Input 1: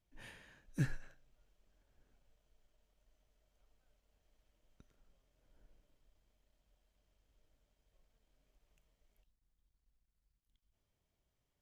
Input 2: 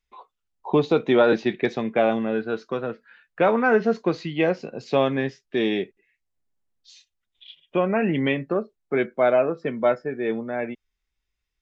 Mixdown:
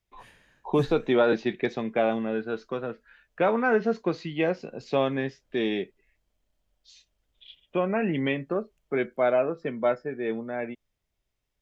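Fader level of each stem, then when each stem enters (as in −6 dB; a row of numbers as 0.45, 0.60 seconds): 0.0, −4.0 decibels; 0.00, 0.00 seconds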